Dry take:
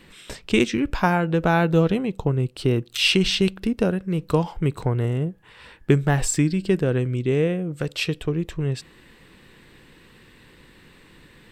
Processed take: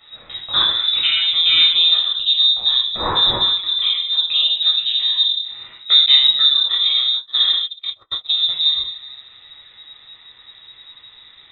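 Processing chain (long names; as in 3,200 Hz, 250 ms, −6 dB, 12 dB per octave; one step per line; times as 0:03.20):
rectangular room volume 910 cubic metres, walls furnished, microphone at 6.3 metres
voice inversion scrambler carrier 3,800 Hz
0:06.06–0:08.40: noise gate −13 dBFS, range −48 dB
level −6.5 dB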